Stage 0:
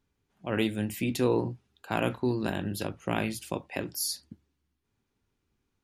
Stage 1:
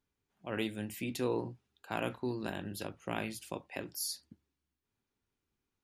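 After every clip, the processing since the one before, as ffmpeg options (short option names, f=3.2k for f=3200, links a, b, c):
-af "lowshelf=f=280:g=-4.5,volume=-6dB"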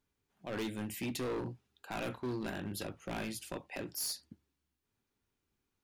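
-af "asoftclip=type=hard:threshold=-35dB,volume=2dB"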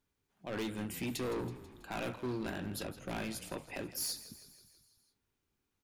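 -filter_complex "[0:a]asplit=7[a][b][c][d][e][f][g];[b]adelay=163,afreqshift=-37,volume=-15dB[h];[c]adelay=326,afreqshift=-74,volume=-19.4dB[i];[d]adelay=489,afreqshift=-111,volume=-23.9dB[j];[e]adelay=652,afreqshift=-148,volume=-28.3dB[k];[f]adelay=815,afreqshift=-185,volume=-32.7dB[l];[g]adelay=978,afreqshift=-222,volume=-37.2dB[m];[a][h][i][j][k][l][m]amix=inputs=7:normalize=0"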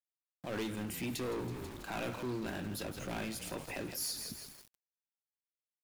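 -af "alimiter=level_in=17.5dB:limit=-24dB:level=0:latency=1:release=69,volume=-17.5dB,aeval=exprs='val(0)*gte(abs(val(0)),0.0015)':c=same,volume=9dB"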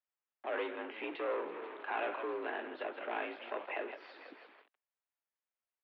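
-filter_complex "[0:a]acrossover=split=360 2800:gain=0.178 1 0.0708[a][b][c];[a][b][c]amix=inputs=3:normalize=0,highpass=f=210:t=q:w=0.5412,highpass=f=210:t=q:w=1.307,lowpass=f=3.5k:t=q:w=0.5176,lowpass=f=3.5k:t=q:w=0.7071,lowpass=f=3.5k:t=q:w=1.932,afreqshift=56,volume=5dB"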